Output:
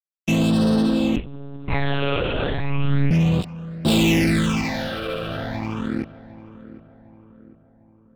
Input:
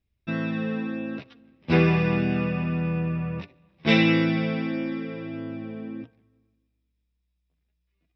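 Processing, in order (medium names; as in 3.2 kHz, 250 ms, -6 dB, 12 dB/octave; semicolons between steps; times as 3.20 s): hum notches 60/120/180 Hz; fuzz box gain 33 dB, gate -37 dBFS; phase shifter stages 8, 0.34 Hz, lowest notch 260–2200 Hz; filtered feedback delay 753 ms, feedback 50%, low-pass 1.3 kHz, level -16 dB; 1.16–3.11 s: monotone LPC vocoder at 8 kHz 140 Hz; trim -2 dB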